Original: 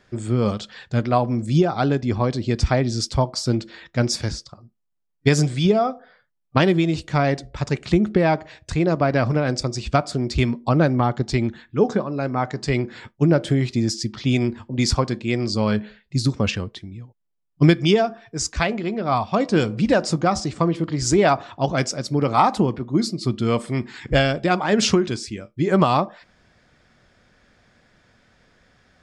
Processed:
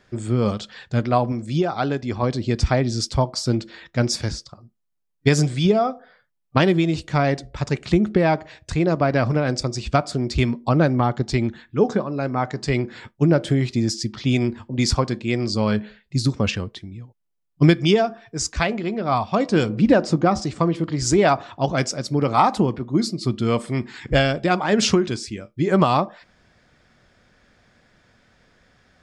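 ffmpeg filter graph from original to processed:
-filter_complex "[0:a]asettb=1/sr,asplit=3[a][b][c];[a]atrim=end=1.324[d];[b]atrim=start=1.32:end=2.23,asetpts=PTS-STARTPTS,afade=t=in:d=0.004:c=qsin,afade=t=out:st=0.906:d=0.004:c=qsin,acrossover=split=5300[e][f];[f]acompressor=threshold=-49dB:ratio=4:attack=1:release=60[g];[e][g]amix=inputs=2:normalize=0,lowshelf=f=350:g=-6[h];[c]atrim=start=2.226[i];[d][h]acrossfade=d=0.004:c1=hsin:c2=qsin[j];[j][i]acrossfade=d=0.004:c1=qsin:c2=hsin,asettb=1/sr,asplit=3[k][l][m];[k]atrim=end=19.694[n];[l]atrim=start=19.69:end=20.42,asetpts=PTS-STARTPTS,afade=t=in:d=0.004:c=qsin,afade=t=out:st=0.726:d=0.004:c=qsin,lowpass=f=3.5k:p=1,equalizer=f=290:t=o:w=1.2:g=5[o];[m]atrim=start=20.416[p];[n][o]acrossfade=d=0.004:c1=hsin:c2=qsin[q];[q][p]acrossfade=d=0.004:c1=qsin:c2=hsin"

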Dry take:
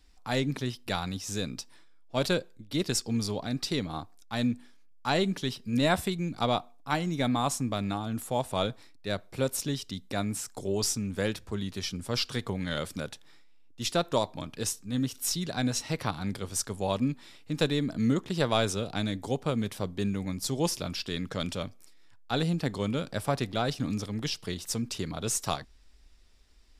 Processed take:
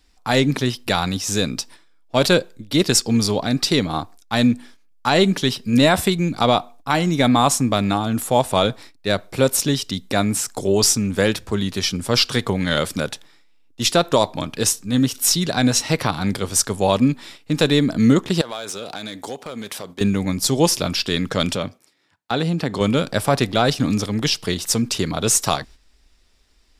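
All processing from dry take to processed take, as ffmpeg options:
-filter_complex "[0:a]asettb=1/sr,asplit=3[a][b][c];[a]atrim=end=18.414[d];[b]atrim=start=18.41:end=20.01,asetpts=PTS-STARTPTS,afade=t=in:d=0.004:c=qsin,afade=t=out:st=1.596:d=0.004:c=qsin,highpass=f=560:p=1,acompressor=threshold=-38dB:ratio=5:attack=3.2:release=140:knee=1:detection=peak,aeval=exprs='clip(val(0),-1,0.0158)':c=same[e];[c]atrim=start=20.006[f];[d][e]acrossfade=d=0.004:c1=hsin:c2=qsin[g];[g][f]acrossfade=d=0.004:c1=qsin:c2=hsin,asettb=1/sr,asplit=3[h][i][j];[h]atrim=end=21.564[k];[i]atrim=start=21.56:end=22.81,asetpts=PTS-STARTPTS,afade=t=in:d=0.004:c=qsin,afade=t=out:st=1.246:d=0.004:c=qsin,highpass=88,highshelf=f=5.4k:g=-7.5,acompressor=threshold=-31dB:ratio=2:attack=3.2:release=140:knee=1:detection=peak[l];[j]atrim=start=22.806[m];[k][l]acrossfade=d=0.004:c1=hsin:c2=qsin[n];[n][m]acrossfade=d=0.004:c1=qsin:c2=hsin,agate=range=-8dB:threshold=-50dB:ratio=16:detection=peak,lowshelf=f=140:g=-5,alimiter=level_in=15dB:limit=-1dB:release=50:level=0:latency=1,volume=-2dB"

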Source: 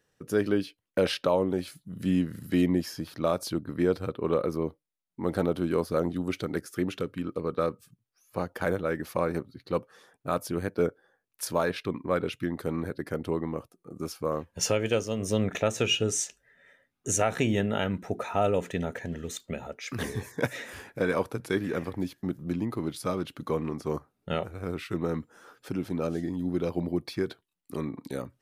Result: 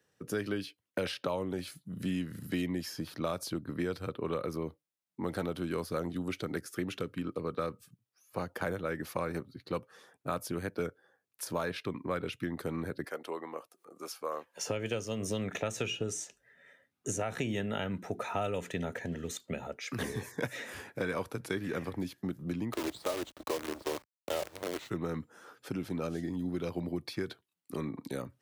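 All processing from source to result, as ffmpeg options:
-filter_complex "[0:a]asettb=1/sr,asplit=3[a][b][c];[a]atrim=end=13.044[d];[b]atrim=start=13.04:end=14.67,asetpts=PTS-STARTPTS,afade=t=in:d=0.004:c=qsin,afade=t=out:st=1.626:d=0.004:c=qsin,highpass=580,acompressor=mode=upward:threshold=-51dB:ratio=2.5:attack=3.2:release=140:knee=2.83:detection=peak[e];[c]atrim=start=14.666[f];[d][e]acrossfade=d=0.004:c1=hsin:c2=qsin[g];[g][f]acrossfade=d=0.004:c1=qsin:c2=hsin,asettb=1/sr,asplit=3[h][i][j];[h]atrim=end=22.734[k];[i]atrim=start=22.73:end=24.9,asetpts=PTS-STARTPTS,afade=t=in:d=0.004:c=qsin,afade=t=out:st=2.166:d=0.004:c=qsin,highpass=f=310:w=0.5412,highpass=f=310:w=1.3066,equalizer=f=320:t=q:w=4:g=6,equalizer=f=600:t=q:w=4:g=9,equalizer=f=880:t=q:w=4:g=4,equalizer=f=1.5k:t=q:w=4:g=-6,equalizer=f=2.5k:t=q:w=4:g=-7,equalizer=f=4k:t=q:w=4:g=8,lowpass=f=4.2k:w=0.5412,lowpass=f=4.2k:w=1.3066,acrusher=bits=6:dc=4:mix=0:aa=0.000001[l];[j]atrim=start=24.896[m];[k][l]acrossfade=d=0.004:c1=hsin:c2=qsin[n];[n][m]acrossfade=d=0.004:c1=qsin:c2=hsin,highpass=75,acrossover=split=130|1300[o][p][q];[o]acompressor=threshold=-42dB:ratio=4[r];[p]acompressor=threshold=-32dB:ratio=4[s];[q]acompressor=threshold=-37dB:ratio=4[t];[r][s][t]amix=inputs=3:normalize=0,volume=-1dB"

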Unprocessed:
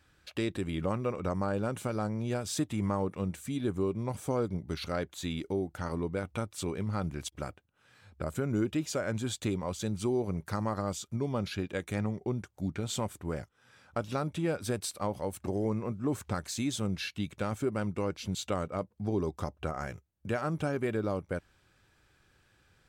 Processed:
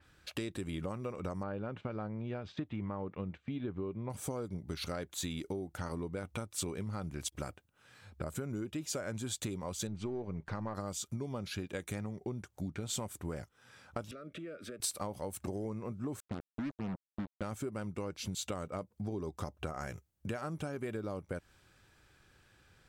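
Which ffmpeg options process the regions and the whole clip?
-filter_complex "[0:a]asettb=1/sr,asplit=3[a][b][c];[a]atrim=end=1.434[d];[b]atrim=start=1.43:end=4.1,asetpts=PTS-STARTPTS,afade=t=in:d=0.004:c=qsin,afade=t=out:st=2.666:d=0.004:c=qsin,lowpass=f=3.2k:w=0.5412,lowpass=f=3.2k:w=1.3066,agate=range=-12dB:threshold=-49dB:ratio=16:release=100:detection=peak[e];[c]atrim=start=4.096[f];[d][e]acrossfade=d=0.004:c1=hsin:c2=qsin[g];[g][f]acrossfade=d=0.004:c1=qsin:c2=hsin,asettb=1/sr,asplit=3[h][i][j];[h]atrim=end=9.874[k];[i]atrim=start=9.87:end=10.75,asetpts=PTS-STARTPTS,afade=t=in:d=0.004:c=qsin,afade=t=out:st=0.876:d=0.004:c=qsin,aeval=exprs='if(lt(val(0),0),0.708*val(0),val(0))':c=same,lowpass=3.1k,bandreject=f=1.3k:w=17[l];[j]atrim=start=10.746[m];[k][l]acrossfade=d=0.004:c1=hsin:c2=qsin[n];[n][m]acrossfade=d=0.004:c1=qsin:c2=hsin,asettb=1/sr,asplit=3[o][p][q];[o]atrim=end=14.114[r];[p]atrim=start=14.11:end=14.8,asetpts=PTS-STARTPTS,afade=t=in:d=0.004:c=qsin,afade=t=out:st=0.686:d=0.004:c=qsin,acrossover=split=210 3100:gain=0.126 1 0.112[s][t][u];[s][t][u]amix=inputs=3:normalize=0,acompressor=threshold=-43dB:ratio=6:attack=3.2:release=140:knee=1:detection=peak,asuperstop=centerf=880:order=20:qfactor=1.9[v];[q]atrim=start=14.796[w];[r][v]acrossfade=d=0.004:c1=hsin:c2=qsin[x];[x][w]acrossfade=d=0.004:c1=qsin:c2=hsin,asettb=1/sr,asplit=3[y][z][aa];[y]atrim=end=16.204[ab];[z]atrim=start=16.2:end=17.42,asetpts=PTS-STARTPTS,afade=t=in:d=0.004:c=qsin,afade=t=out:st=1.216:d=0.004:c=qsin,bandpass=f=220:t=q:w=1.1,acrusher=bits=5:mix=0:aa=0.5[ac];[aa]atrim=start=17.416[ad];[ab][ac]acrossfade=d=0.004:c1=hsin:c2=qsin[ae];[ae][ad]acrossfade=d=0.004:c1=qsin:c2=hsin,acompressor=threshold=-37dB:ratio=6,adynamicequalizer=threshold=0.00141:dfrequency=5100:dqfactor=0.7:tfrequency=5100:tqfactor=0.7:attack=5:release=100:ratio=0.375:range=3:mode=boostabove:tftype=highshelf,volume=1.5dB"

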